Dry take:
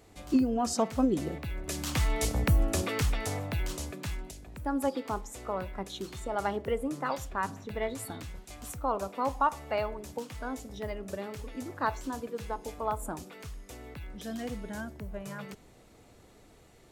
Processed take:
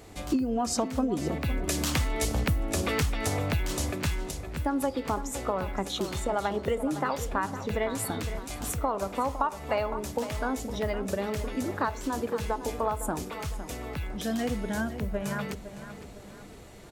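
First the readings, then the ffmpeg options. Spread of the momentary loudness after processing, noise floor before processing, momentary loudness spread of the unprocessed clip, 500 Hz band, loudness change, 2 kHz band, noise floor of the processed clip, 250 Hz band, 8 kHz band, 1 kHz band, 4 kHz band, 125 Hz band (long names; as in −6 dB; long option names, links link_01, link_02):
8 LU, −57 dBFS, 14 LU, +3.5 dB, +2.5 dB, +4.0 dB, −46 dBFS, +2.5 dB, +4.5 dB, +2.0 dB, +5.0 dB, +3.0 dB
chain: -filter_complex "[0:a]acompressor=threshold=-33dB:ratio=6,asplit=2[link_01][link_02];[link_02]adelay=509,lowpass=frequency=4200:poles=1,volume=-11.5dB,asplit=2[link_03][link_04];[link_04]adelay=509,lowpass=frequency=4200:poles=1,volume=0.44,asplit=2[link_05][link_06];[link_06]adelay=509,lowpass=frequency=4200:poles=1,volume=0.44,asplit=2[link_07][link_08];[link_08]adelay=509,lowpass=frequency=4200:poles=1,volume=0.44[link_09];[link_01][link_03][link_05][link_07][link_09]amix=inputs=5:normalize=0,volume=8.5dB"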